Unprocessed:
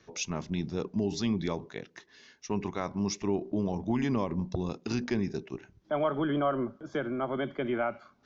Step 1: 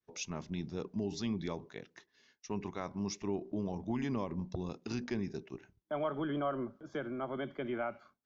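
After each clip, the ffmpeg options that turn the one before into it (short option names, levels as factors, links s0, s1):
-af "agate=range=0.0224:threshold=0.00316:ratio=3:detection=peak,volume=0.473"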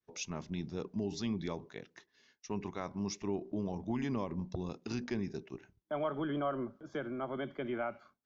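-af anull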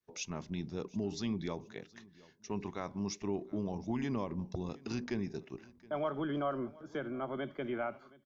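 -af "aecho=1:1:720|1440:0.075|0.024"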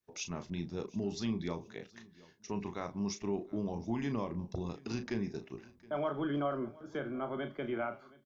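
-filter_complex "[0:a]asplit=2[s0][s1];[s1]adelay=35,volume=0.355[s2];[s0][s2]amix=inputs=2:normalize=0"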